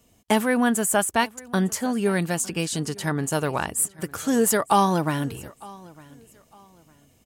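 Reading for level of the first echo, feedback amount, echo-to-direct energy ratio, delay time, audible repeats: -22.5 dB, 30%, -22.0 dB, 0.906 s, 2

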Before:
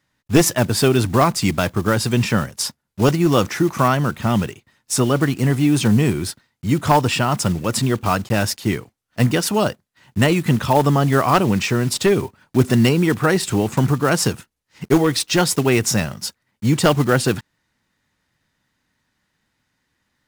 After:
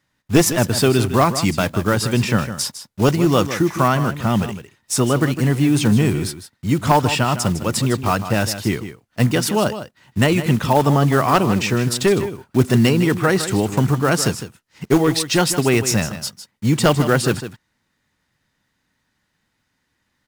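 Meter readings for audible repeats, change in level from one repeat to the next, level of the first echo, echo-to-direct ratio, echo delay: 1, no steady repeat, -11.5 dB, -11.5 dB, 0.156 s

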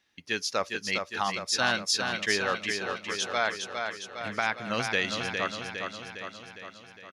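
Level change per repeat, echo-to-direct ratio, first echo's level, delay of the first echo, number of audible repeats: -4.5 dB, -3.5 dB, -5.5 dB, 0.408 s, 7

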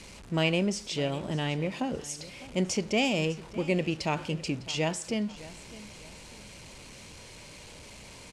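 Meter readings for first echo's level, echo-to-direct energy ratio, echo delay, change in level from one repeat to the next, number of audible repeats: -18.0 dB, -17.5 dB, 0.605 s, -8.5 dB, 2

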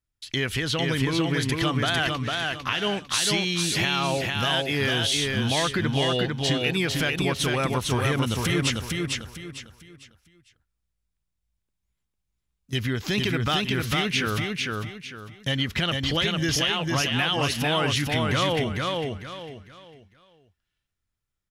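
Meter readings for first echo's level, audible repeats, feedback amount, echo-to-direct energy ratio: -3.0 dB, 4, 31%, -2.5 dB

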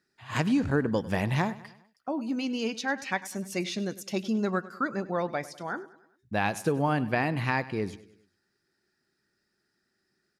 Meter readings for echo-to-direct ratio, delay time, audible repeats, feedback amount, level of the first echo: -17.0 dB, 0.1 s, 3, 50%, -18.0 dB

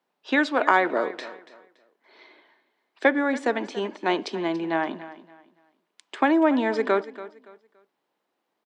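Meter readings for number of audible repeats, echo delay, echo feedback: 2, 0.284 s, 28%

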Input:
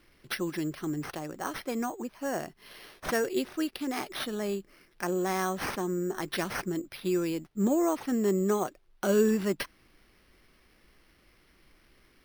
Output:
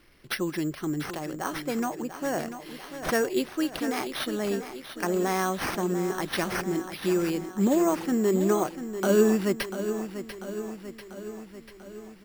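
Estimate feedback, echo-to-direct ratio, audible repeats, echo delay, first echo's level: 60%, -8.5 dB, 6, 0.692 s, -10.5 dB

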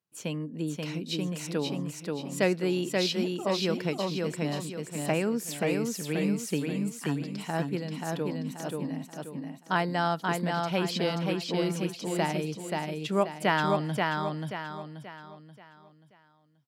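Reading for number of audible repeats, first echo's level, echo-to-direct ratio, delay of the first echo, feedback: 4, -3.0 dB, -2.5 dB, 0.532 s, 39%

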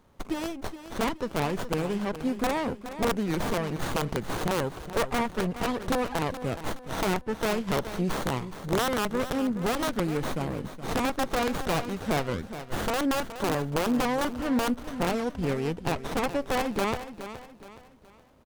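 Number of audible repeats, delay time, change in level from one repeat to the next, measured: 3, 0.42 s, -8.5 dB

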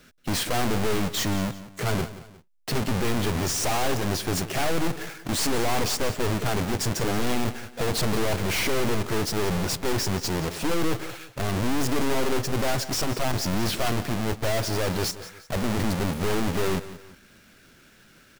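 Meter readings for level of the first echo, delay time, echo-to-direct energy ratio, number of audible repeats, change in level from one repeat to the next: -15.0 dB, 0.178 s, -14.5 dB, 2, -8.5 dB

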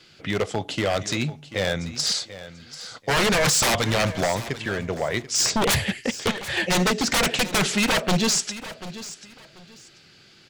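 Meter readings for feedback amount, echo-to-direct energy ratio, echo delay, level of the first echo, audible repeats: 23%, -15.0 dB, 0.738 s, -15.0 dB, 2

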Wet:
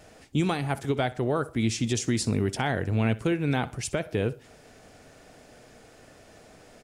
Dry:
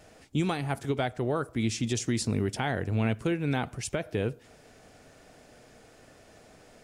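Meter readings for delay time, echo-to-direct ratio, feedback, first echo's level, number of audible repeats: 62 ms, -19.0 dB, 26%, -19.5 dB, 2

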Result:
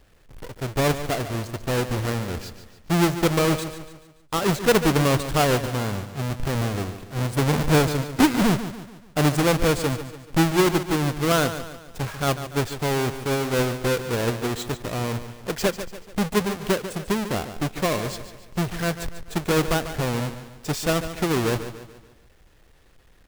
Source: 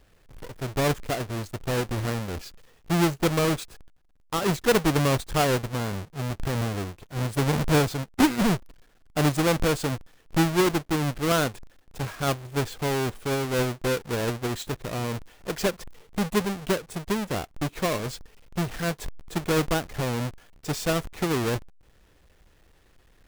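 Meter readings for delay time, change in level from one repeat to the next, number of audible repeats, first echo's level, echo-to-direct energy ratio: 0.144 s, -7.0 dB, 4, -11.5 dB, -10.5 dB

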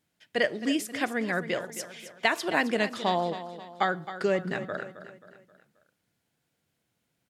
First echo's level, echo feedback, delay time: -12.5 dB, 45%, 0.266 s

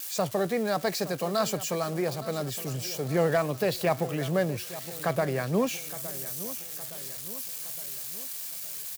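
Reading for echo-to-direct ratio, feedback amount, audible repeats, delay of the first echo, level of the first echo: -14.0 dB, 51%, 4, 0.865 s, -15.5 dB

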